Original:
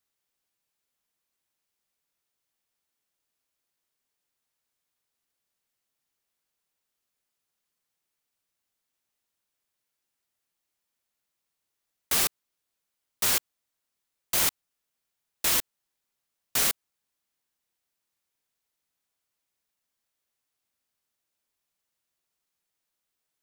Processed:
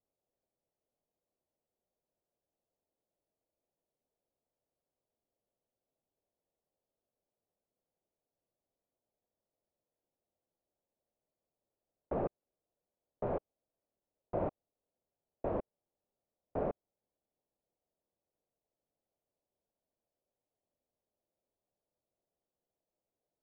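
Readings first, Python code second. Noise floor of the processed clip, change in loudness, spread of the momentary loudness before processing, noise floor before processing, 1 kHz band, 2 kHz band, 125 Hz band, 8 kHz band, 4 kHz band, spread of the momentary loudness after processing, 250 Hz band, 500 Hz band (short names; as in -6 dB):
under -85 dBFS, -14.5 dB, 4 LU, -84 dBFS, -4.5 dB, -24.5 dB, +2.0 dB, under -40 dB, under -40 dB, 4 LU, +2.0 dB, +5.5 dB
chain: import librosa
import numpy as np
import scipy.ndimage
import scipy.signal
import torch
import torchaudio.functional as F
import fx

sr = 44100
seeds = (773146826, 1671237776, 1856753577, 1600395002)

y = fx.rattle_buzz(x, sr, strikes_db=-48.0, level_db=-21.0)
y = fx.ladder_lowpass(y, sr, hz=720.0, resonance_pct=45)
y = y * 10.0 ** (9.5 / 20.0)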